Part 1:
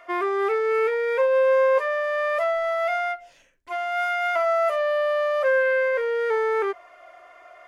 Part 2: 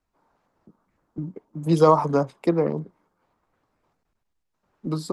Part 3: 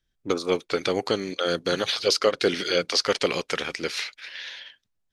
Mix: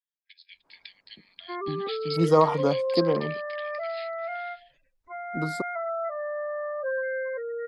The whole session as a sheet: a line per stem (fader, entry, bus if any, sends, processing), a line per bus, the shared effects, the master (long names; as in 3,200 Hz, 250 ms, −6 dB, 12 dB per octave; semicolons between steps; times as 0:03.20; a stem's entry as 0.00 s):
−9.0 dB, 1.40 s, no send, bass and treble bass +8 dB, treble −5 dB; gate on every frequency bin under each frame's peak −15 dB strong
−3.5 dB, 0.50 s, no send, no processing
−9.0 dB, 0.00 s, no send, brick-wall band-pass 1,600–5,200 Hz; expander for the loud parts 1.5 to 1, over −40 dBFS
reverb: not used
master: no processing